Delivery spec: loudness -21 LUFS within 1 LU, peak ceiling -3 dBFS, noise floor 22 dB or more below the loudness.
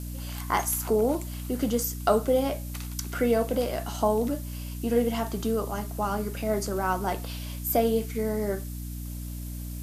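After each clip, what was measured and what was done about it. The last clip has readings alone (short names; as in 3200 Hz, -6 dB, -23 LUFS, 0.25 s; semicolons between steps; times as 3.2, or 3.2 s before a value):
hum 60 Hz; harmonics up to 300 Hz; hum level -33 dBFS; noise floor -36 dBFS; noise floor target -51 dBFS; loudness -28.5 LUFS; peak -9.5 dBFS; loudness target -21.0 LUFS
-> de-hum 60 Hz, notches 5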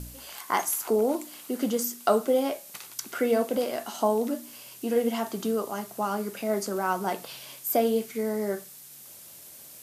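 hum none; noise floor -47 dBFS; noise floor target -50 dBFS
-> noise print and reduce 6 dB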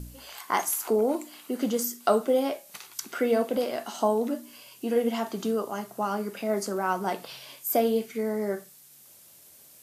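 noise floor -53 dBFS; loudness -28.5 LUFS; peak -9.0 dBFS; loudness target -21.0 LUFS
-> gain +7.5 dB; limiter -3 dBFS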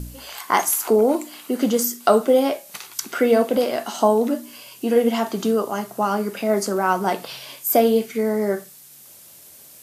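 loudness -21.0 LUFS; peak -3.0 dBFS; noise floor -46 dBFS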